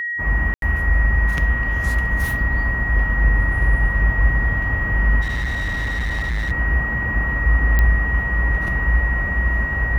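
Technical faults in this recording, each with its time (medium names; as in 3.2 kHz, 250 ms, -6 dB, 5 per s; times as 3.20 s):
whine 1.9 kHz -22 dBFS
0.54–0.62 s: dropout 82 ms
5.21–6.52 s: clipped -19.5 dBFS
7.79 s: pop -6 dBFS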